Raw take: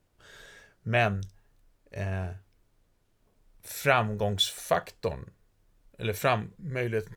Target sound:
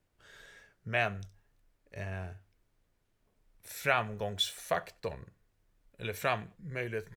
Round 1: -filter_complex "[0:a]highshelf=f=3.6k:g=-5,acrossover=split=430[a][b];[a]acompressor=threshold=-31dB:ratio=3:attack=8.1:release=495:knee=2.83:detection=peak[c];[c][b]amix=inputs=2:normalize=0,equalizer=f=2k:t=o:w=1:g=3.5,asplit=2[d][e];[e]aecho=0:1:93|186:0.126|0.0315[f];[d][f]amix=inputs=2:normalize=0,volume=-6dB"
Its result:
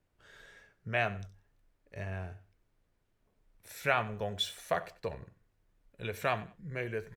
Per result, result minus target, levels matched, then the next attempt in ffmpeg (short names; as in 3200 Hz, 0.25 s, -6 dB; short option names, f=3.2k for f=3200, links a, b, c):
echo-to-direct +8 dB; 8000 Hz band -3.0 dB
-filter_complex "[0:a]highshelf=f=3.6k:g=-5,acrossover=split=430[a][b];[a]acompressor=threshold=-31dB:ratio=3:attack=8.1:release=495:knee=2.83:detection=peak[c];[c][b]amix=inputs=2:normalize=0,equalizer=f=2k:t=o:w=1:g=3.5,asplit=2[d][e];[e]aecho=0:1:93|186:0.0501|0.0125[f];[d][f]amix=inputs=2:normalize=0,volume=-6dB"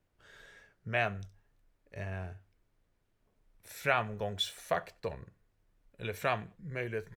8000 Hz band -3.0 dB
-filter_complex "[0:a]acrossover=split=430[a][b];[a]acompressor=threshold=-31dB:ratio=3:attack=8.1:release=495:knee=2.83:detection=peak[c];[c][b]amix=inputs=2:normalize=0,equalizer=f=2k:t=o:w=1:g=3.5,asplit=2[d][e];[e]aecho=0:1:93|186:0.0501|0.0125[f];[d][f]amix=inputs=2:normalize=0,volume=-6dB"